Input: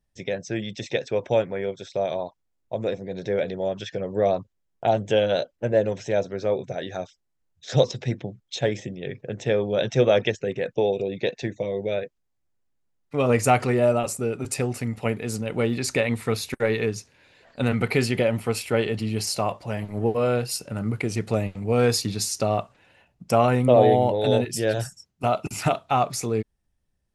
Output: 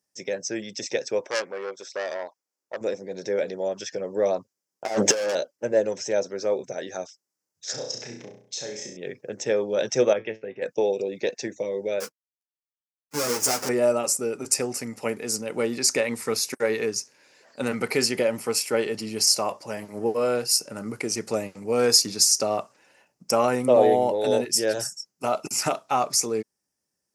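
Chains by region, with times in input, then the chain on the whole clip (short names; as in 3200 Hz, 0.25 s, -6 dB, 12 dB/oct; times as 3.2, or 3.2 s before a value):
1.21–2.81 tone controls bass -11 dB, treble -4 dB + core saturation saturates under 2600 Hz
4.85–5.35 overdrive pedal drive 28 dB, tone 2500 Hz, clips at -8.5 dBFS + negative-ratio compressor -20 dBFS, ratio -0.5
7.71–8.97 compressor 3:1, threshold -35 dBFS + flutter echo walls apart 5.7 m, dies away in 0.53 s + mismatched tape noise reduction decoder only
10.13–10.62 LPF 3000 Hz 24 dB/oct + resonator 110 Hz, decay 0.21 s, mix 70%
12–13.69 half-waves squared off + compressor 3:1, threshold -20 dBFS + ensemble effect
whole clip: HPF 270 Hz 12 dB/oct; resonant high shelf 4400 Hz +6 dB, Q 3; notch 700 Hz, Q 12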